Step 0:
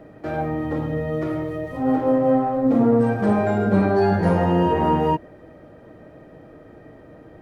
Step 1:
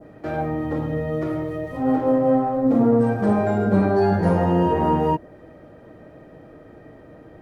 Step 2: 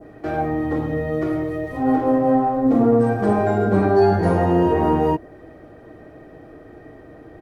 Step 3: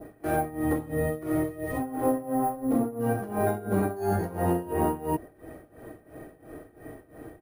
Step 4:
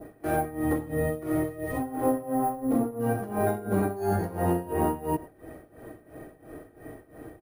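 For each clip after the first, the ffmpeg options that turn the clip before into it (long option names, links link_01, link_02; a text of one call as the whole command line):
ffmpeg -i in.wav -af "adynamicequalizer=threshold=0.0126:dfrequency=2600:dqfactor=0.83:tfrequency=2600:tqfactor=0.83:attack=5:release=100:ratio=0.375:range=2:mode=cutabove:tftype=bell" out.wav
ffmpeg -i in.wav -af "aecho=1:1:2.7:0.36,volume=2dB" out.wav
ffmpeg -i in.wav -af "acompressor=threshold=-20dB:ratio=6,acrusher=samples=4:mix=1:aa=0.000001,tremolo=f=2.9:d=0.86" out.wav
ffmpeg -i in.wav -af "aecho=1:1:101:0.0891" out.wav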